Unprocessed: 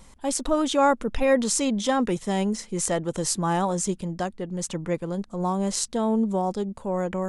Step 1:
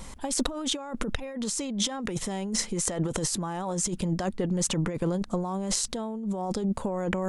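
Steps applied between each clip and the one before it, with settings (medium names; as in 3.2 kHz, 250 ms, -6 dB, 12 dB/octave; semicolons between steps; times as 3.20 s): compressor with a negative ratio -32 dBFS, ratio -1; trim +2 dB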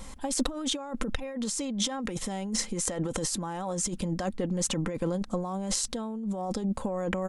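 comb 3.8 ms, depth 32%; trim -2 dB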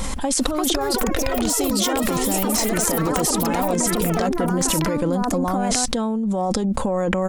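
ever faster or slower copies 405 ms, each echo +5 st, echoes 3; level flattener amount 70%; trim +4.5 dB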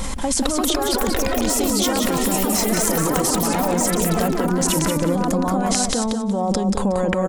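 feedback delay 183 ms, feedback 24%, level -5.5 dB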